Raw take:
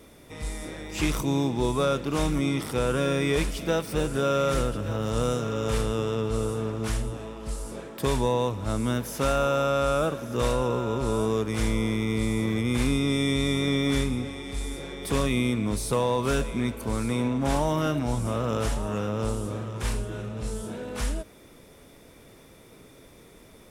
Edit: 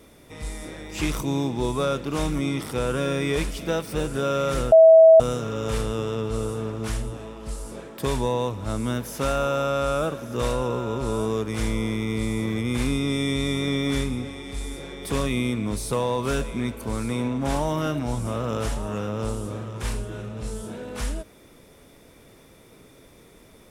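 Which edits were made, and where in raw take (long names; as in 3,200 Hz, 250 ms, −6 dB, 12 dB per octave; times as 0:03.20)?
0:04.72–0:05.20: beep over 648 Hz −7.5 dBFS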